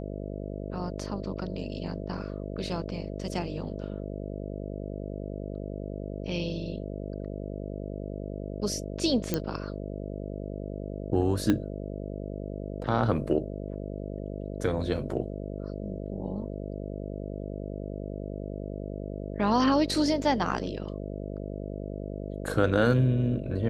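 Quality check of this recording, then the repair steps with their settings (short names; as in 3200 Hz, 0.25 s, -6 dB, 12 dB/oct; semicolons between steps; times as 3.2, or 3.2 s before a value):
buzz 50 Hz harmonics 13 -36 dBFS
9.34 pop -12 dBFS
11.5 pop -13 dBFS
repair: de-click; de-hum 50 Hz, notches 13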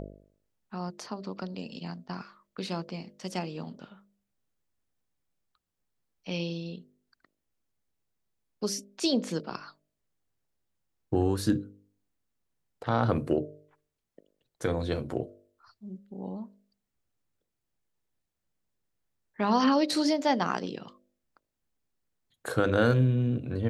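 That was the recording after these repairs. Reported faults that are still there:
11.5 pop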